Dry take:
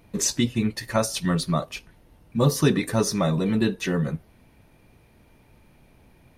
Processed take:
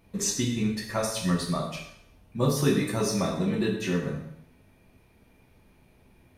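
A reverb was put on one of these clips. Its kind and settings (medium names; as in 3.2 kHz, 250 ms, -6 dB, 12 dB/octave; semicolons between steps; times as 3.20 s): plate-style reverb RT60 0.73 s, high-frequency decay 0.95×, DRR -0.5 dB; trim -6.5 dB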